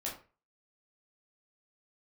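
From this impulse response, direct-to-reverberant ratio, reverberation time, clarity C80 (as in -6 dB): -4.5 dB, 0.35 s, 12.5 dB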